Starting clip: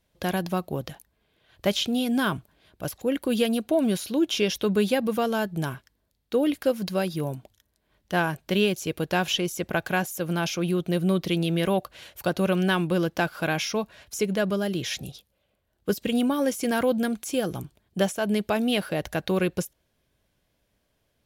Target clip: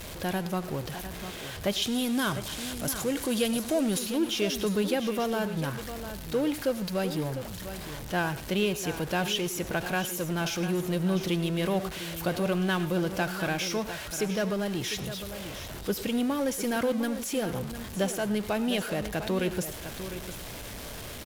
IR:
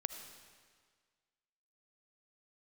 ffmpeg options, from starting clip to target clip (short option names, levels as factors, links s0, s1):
-filter_complex "[0:a]aeval=exprs='val(0)+0.5*0.0376*sgn(val(0))':c=same,asettb=1/sr,asplit=3[s0][s1][s2];[s0]atrim=end=1.824[s3];[s1]atrim=start=1.82:end=3.99,asetpts=PTS-STARTPTS,afade=t=in:d=0.004:c=qsin,afade=t=out:st=2.166:d=0.004:c=qsin,equalizer=f=8200:w=0.58:g=8[s4];[s2]atrim=start=3.986[s5];[s3][s4]acrossfade=d=0.004:c1=hsin:c2=qsin[s6];[s6][s5]acrossfade=d=0.004:c1=qsin:c2=hsin,aecho=1:1:702:0.282[s7];[1:a]atrim=start_sample=2205,atrim=end_sample=3528,asetrate=29547,aresample=44100[s8];[s7][s8]afir=irnorm=-1:irlink=0,volume=0.473"